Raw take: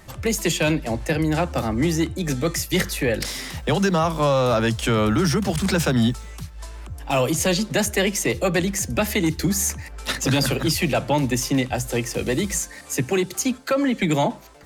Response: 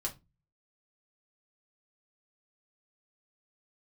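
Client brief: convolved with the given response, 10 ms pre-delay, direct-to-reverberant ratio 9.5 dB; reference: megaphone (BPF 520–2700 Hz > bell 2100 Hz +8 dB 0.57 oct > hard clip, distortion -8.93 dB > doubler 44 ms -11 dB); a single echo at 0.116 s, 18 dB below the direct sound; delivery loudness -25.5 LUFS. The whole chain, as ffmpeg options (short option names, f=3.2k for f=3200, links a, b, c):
-filter_complex "[0:a]aecho=1:1:116:0.126,asplit=2[a][b];[1:a]atrim=start_sample=2205,adelay=10[c];[b][c]afir=irnorm=-1:irlink=0,volume=-11dB[d];[a][d]amix=inputs=2:normalize=0,highpass=520,lowpass=2.7k,equalizer=f=2.1k:t=o:w=0.57:g=8,asoftclip=type=hard:threshold=-22dB,asplit=2[e][f];[f]adelay=44,volume=-11dB[g];[e][g]amix=inputs=2:normalize=0,volume=1.5dB"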